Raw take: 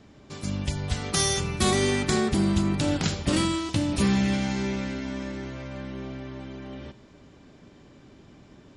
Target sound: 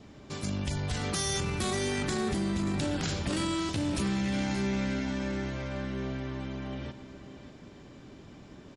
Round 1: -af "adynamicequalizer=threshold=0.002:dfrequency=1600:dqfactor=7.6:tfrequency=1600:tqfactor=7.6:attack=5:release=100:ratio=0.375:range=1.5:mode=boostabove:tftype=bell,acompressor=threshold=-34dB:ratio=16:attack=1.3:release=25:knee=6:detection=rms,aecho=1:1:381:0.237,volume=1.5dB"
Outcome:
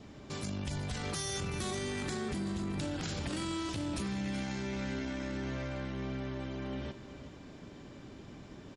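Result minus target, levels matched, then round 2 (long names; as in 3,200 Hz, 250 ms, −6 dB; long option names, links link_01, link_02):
echo 201 ms early; downward compressor: peak gain reduction +6 dB
-af "adynamicequalizer=threshold=0.002:dfrequency=1600:dqfactor=7.6:tfrequency=1600:tqfactor=7.6:attack=5:release=100:ratio=0.375:range=1.5:mode=boostabove:tftype=bell,acompressor=threshold=-27.5dB:ratio=16:attack=1.3:release=25:knee=6:detection=rms,aecho=1:1:582:0.237,volume=1.5dB"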